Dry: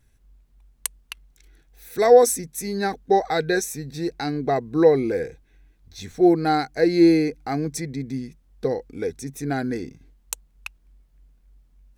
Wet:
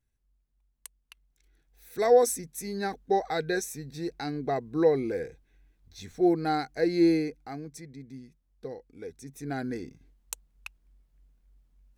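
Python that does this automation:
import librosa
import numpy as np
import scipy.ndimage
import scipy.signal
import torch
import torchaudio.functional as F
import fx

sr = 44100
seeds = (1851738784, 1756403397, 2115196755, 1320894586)

y = fx.gain(x, sr, db=fx.line((0.98, -18.0), (2.02, -7.0), (7.15, -7.0), (7.66, -15.0), (8.94, -15.0), (9.62, -7.0)))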